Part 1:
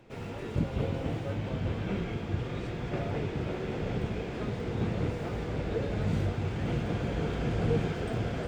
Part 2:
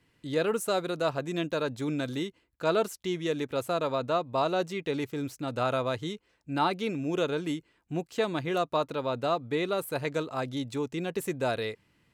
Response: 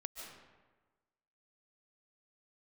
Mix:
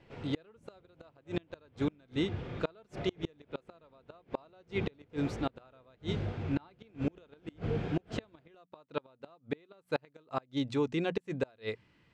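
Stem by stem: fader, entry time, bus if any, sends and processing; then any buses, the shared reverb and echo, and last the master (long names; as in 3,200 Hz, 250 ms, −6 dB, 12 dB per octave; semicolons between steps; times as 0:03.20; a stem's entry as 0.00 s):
−5.5 dB, 0.00 s, no send, pitch vibrato 1.8 Hz 46 cents
+1.5 dB, 0.00 s, no send, no processing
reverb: not used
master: low-pass filter 4,600 Hz 12 dB per octave; mains-hum notches 60/120/180/240 Hz; gate with flip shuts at −20 dBFS, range −33 dB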